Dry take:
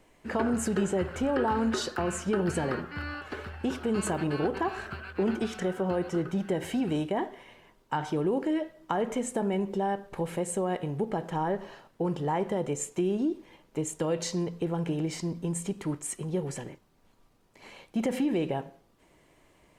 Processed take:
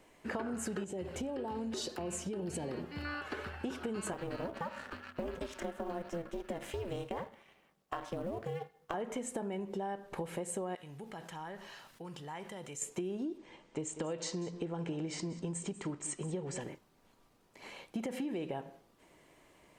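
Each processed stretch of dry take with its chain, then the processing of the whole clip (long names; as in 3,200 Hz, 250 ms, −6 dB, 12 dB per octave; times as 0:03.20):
0:00.84–0:03.05: downward compressor 4 to 1, threshold −29 dBFS + parametric band 1,400 Hz −15 dB 0.89 octaves
0:04.13–0:08.94: mu-law and A-law mismatch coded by A + ring modulation 170 Hz
0:10.75–0:12.82: guitar amp tone stack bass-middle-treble 5-5-5 + envelope flattener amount 50%
0:13.38–0:16.61: Butterworth low-pass 8,800 Hz 72 dB per octave + single-tap delay 192 ms −16 dB
whole clip: low-shelf EQ 120 Hz −8 dB; downward compressor, threshold −35 dBFS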